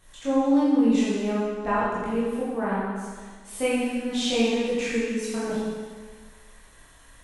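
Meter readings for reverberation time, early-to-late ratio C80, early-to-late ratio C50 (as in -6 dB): 1.6 s, 0.0 dB, -2.5 dB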